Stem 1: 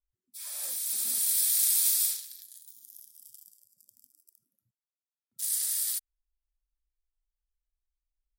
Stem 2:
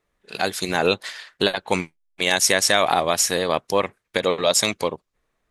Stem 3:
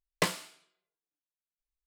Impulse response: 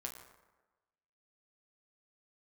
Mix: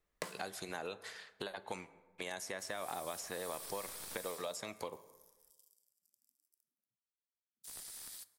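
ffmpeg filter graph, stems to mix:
-filter_complex "[0:a]highpass=210,aeval=exprs='clip(val(0),-1,0.0531)':c=same,highshelf=f=9.5k:g=-7,adelay=2250,volume=-14dB,asplit=2[a][b];[b]volume=-6.5dB[c];[1:a]acompressor=threshold=-21dB:ratio=6,volume=-13.5dB,asplit=3[d][e][f];[e]volume=-7dB[g];[2:a]acompressor=threshold=-38dB:ratio=4,volume=0.5dB,asplit=2[h][i];[i]volume=-7.5dB[j];[f]apad=whole_len=82035[k];[h][k]sidechaincompress=threshold=-56dB:ratio=8:attack=6.2:release=390[l];[3:a]atrim=start_sample=2205[m];[c][g][j]amix=inputs=3:normalize=0[n];[n][m]afir=irnorm=-1:irlink=0[o];[a][d][l][o]amix=inputs=4:normalize=0,acrossover=split=480|1900|5600[p][q][r][s];[p]acompressor=threshold=-49dB:ratio=4[t];[q]acompressor=threshold=-40dB:ratio=4[u];[r]acompressor=threshold=-54dB:ratio=4[v];[s]acompressor=threshold=-48dB:ratio=4[w];[t][u][v][w]amix=inputs=4:normalize=0"

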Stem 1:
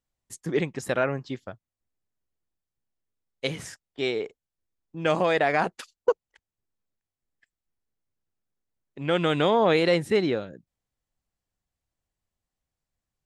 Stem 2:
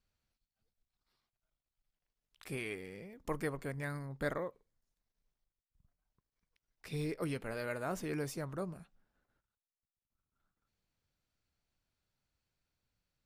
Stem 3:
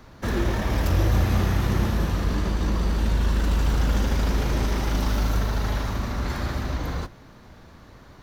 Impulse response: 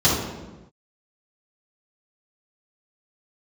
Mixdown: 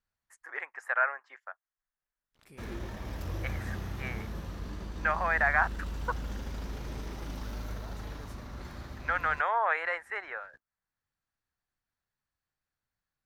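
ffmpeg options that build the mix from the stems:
-filter_complex "[0:a]highpass=f=790:w=0.5412,highpass=f=790:w=1.3066,highshelf=f=2.5k:t=q:w=3:g=-14,volume=-3dB,asplit=2[a][b];[1:a]acompressor=threshold=-56dB:ratio=1.5,volume=-7dB[c];[2:a]aeval=exprs='sgn(val(0))*max(abs(val(0))-0.00447,0)':c=same,adelay=2350,volume=-15dB[d];[b]apad=whole_len=584336[e];[c][e]sidechaincompress=threshold=-46dB:ratio=8:attack=16:release=690[f];[a][f][d]amix=inputs=3:normalize=0"

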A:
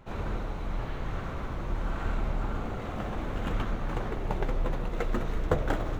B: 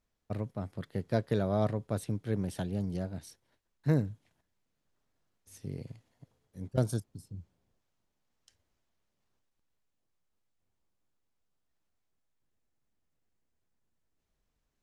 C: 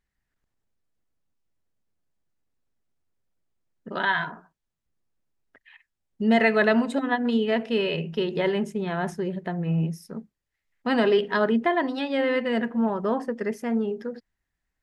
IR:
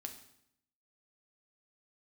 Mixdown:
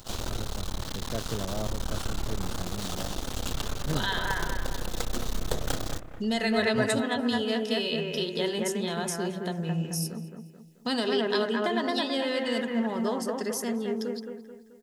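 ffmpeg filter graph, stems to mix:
-filter_complex "[0:a]aeval=exprs='max(val(0),0)':c=same,volume=3dB,asplit=3[a][b][c];[b]volume=-8dB[d];[c]volume=-14dB[e];[1:a]volume=-5.5dB[f];[2:a]volume=-5dB,asplit=3[g][h][i];[h]volume=-7dB[j];[i]volume=-3.5dB[k];[a][g]amix=inputs=2:normalize=0,aexciter=amount=14.1:drive=3.5:freq=3.3k,acompressor=threshold=-31dB:ratio=3,volume=0dB[l];[3:a]atrim=start_sample=2205[m];[d][j]amix=inputs=2:normalize=0[n];[n][m]afir=irnorm=-1:irlink=0[o];[e][k]amix=inputs=2:normalize=0,aecho=0:1:217|434|651|868|1085|1302:1|0.42|0.176|0.0741|0.0311|0.0131[p];[f][l][o][p]amix=inputs=4:normalize=0"

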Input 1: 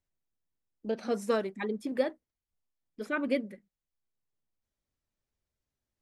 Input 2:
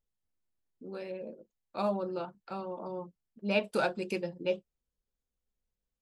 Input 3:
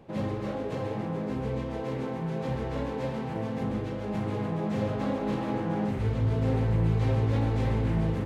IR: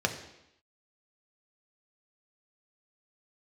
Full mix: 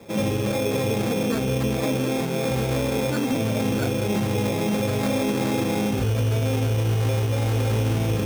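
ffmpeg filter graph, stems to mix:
-filter_complex "[0:a]asubboost=boost=10.5:cutoff=210,volume=1.5dB[a];[1:a]volume=-1dB[b];[2:a]volume=0.5dB,asplit=2[c][d];[d]volume=-4dB[e];[3:a]atrim=start_sample=2205[f];[e][f]afir=irnorm=-1:irlink=0[g];[a][b][c][g]amix=inputs=4:normalize=0,acrossover=split=370|3000[h][i][j];[h]acompressor=threshold=-18dB:ratio=6[k];[k][i][j]amix=inputs=3:normalize=0,acrusher=samples=15:mix=1:aa=0.000001,alimiter=limit=-16dB:level=0:latency=1:release=34"

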